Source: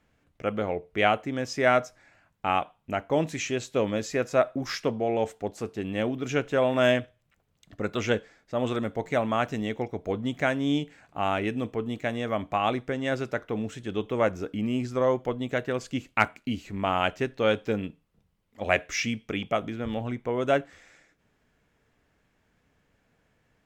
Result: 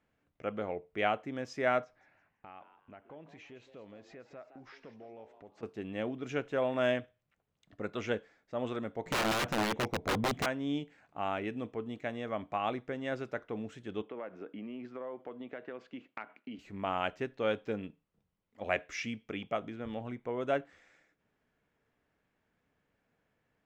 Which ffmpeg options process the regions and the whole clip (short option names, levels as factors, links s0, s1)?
-filter_complex "[0:a]asettb=1/sr,asplit=3[s0][s1][s2];[s0]atrim=end=1.844[s3];[s1]atrim=start=1.84:end=5.63,asetpts=PTS-STARTPTS,afade=t=in:d=0.004:c=qsin,afade=t=out:st=3.786:d=0.004:c=qsin,lowpass=3600,acompressor=threshold=0.00562:ratio=3:attack=3.2:release=140:knee=1:detection=peak,asplit=4[s4][s5][s6][s7];[s5]adelay=166,afreqshift=140,volume=0.237[s8];[s6]adelay=332,afreqshift=280,volume=0.0804[s9];[s7]adelay=498,afreqshift=420,volume=0.0275[s10];[s4][s8][s9][s10]amix=inputs=4:normalize=0,atrim=end_sample=167139[s11];[s2]atrim=start=5.626[s12];[s3][s11]acrossfade=d=0.004:c1=hsin:c2=qsin[s13];[s13][s12]acrossfade=d=0.004:c1=qsin:c2=hsin,asettb=1/sr,asplit=3[s14][s15][s16];[s14]atrim=end=9.064[s17];[s15]atrim=start=9.06:end=10.46,asetpts=PTS-STARTPTS,afade=t=in:d=0.004:c=qsin,afade=t=out:st=1.396:d=0.004:c=qsin,lowshelf=f=230:g=8,acontrast=55,aeval=exprs='(mod(6.31*val(0)+1,2)-1)/6.31':c=same[s18];[s16]atrim=start=10.456[s19];[s17][s18]acrossfade=d=0.004:c1=hsin:c2=qsin[s20];[s20][s19]acrossfade=d=0.004:c1=qsin:c2=hsin,asettb=1/sr,asplit=3[s21][s22][s23];[s21]atrim=end=14.024[s24];[s22]atrim=start=14.02:end=16.59,asetpts=PTS-STARTPTS,afade=t=in:d=0.004:c=qsin,afade=t=out:st=2.566:d=0.004:c=qsin,acrossover=split=180 3600:gain=0.0631 1 0.0631[s25][s26][s27];[s25][s26][s27]amix=inputs=3:normalize=0,acompressor=threshold=0.0316:ratio=6:attack=3.2:release=140:knee=1:detection=peak[s28];[s23]atrim=start=16.586[s29];[s24][s28]acrossfade=d=0.004:c1=hsin:c2=qsin[s30];[s30][s29]acrossfade=d=0.004:c1=qsin:c2=hsin,lowpass=f=3100:p=1,lowshelf=f=110:g=-8.5,volume=0.447"